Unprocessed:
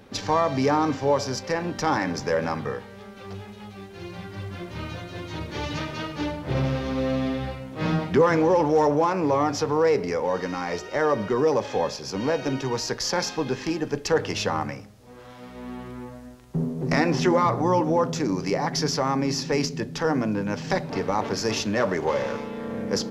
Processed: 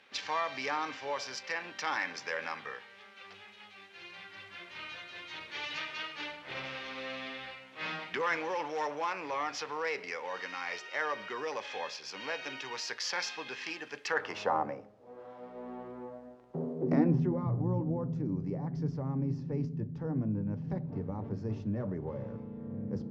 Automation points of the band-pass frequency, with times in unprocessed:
band-pass, Q 1.4
13.98 s 2500 Hz
14.63 s 580 Hz
16.72 s 580 Hz
17.26 s 110 Hz

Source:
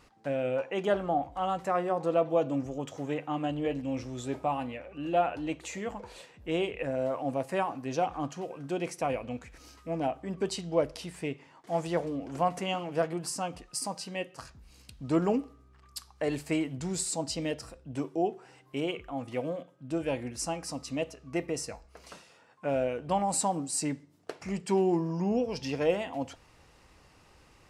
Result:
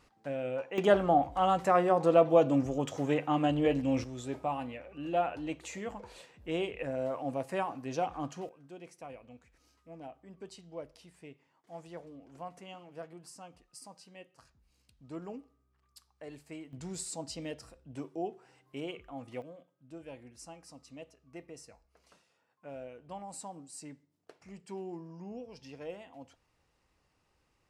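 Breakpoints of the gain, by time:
-5 dB
from 0.78 s +3.5 dB
from 4.04 s -3.5 dB
from 8.49 s -16 dB
from 16.73 s -7.5 dB
from 19.42 s -15.5 dB

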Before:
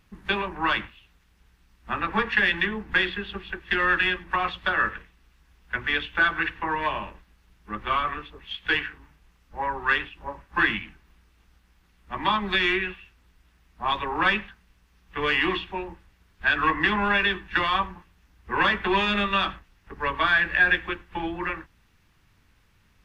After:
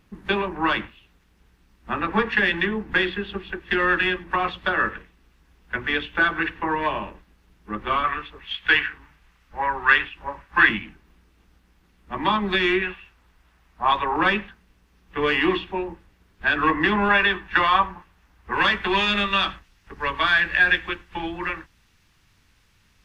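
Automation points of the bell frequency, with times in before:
bell +6.5 dB 2.3 oct
330 Hz
from 8.04 s 1800 Hz
from 10.69 s 310 Hz
from 12.82 s 900 Hz
from 14.16 s 340 Hz
from 17.09 s 930 Hz
from 18.53 s 5800 Hz

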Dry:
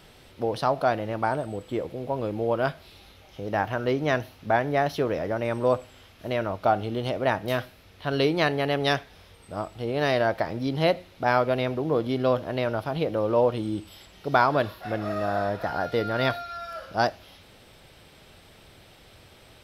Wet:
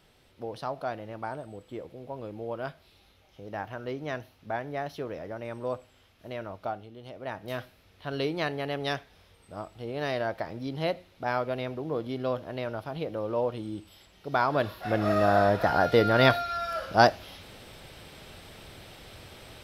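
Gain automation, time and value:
6.63 s -10 dB
6.93 s -18.5 dB
7.61 s -7 dB
14.28 s -7 dB
15.1 s +4.5 dB

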